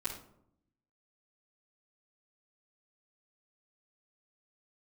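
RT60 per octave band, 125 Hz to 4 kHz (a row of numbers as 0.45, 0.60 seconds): 1.1, 1.0, 0.75, 0.65, 0.45, 0.35 seconds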